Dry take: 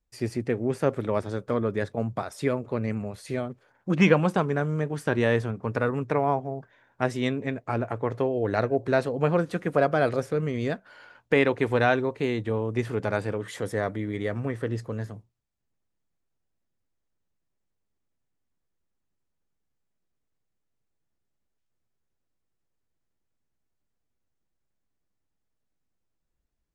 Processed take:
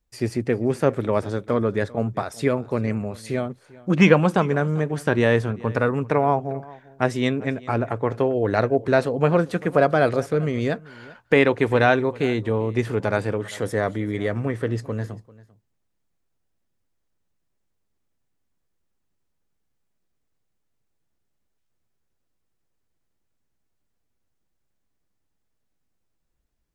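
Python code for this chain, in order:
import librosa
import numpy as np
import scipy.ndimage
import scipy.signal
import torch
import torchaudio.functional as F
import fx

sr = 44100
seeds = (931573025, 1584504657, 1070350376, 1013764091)

y = x + 10.0 ** (-21.5 / 20.0) * np.pad(x, (int(394 * sr / 1000.0), 0))[:len(x)]
y = y * librosa.db_to_amplitude(4.5)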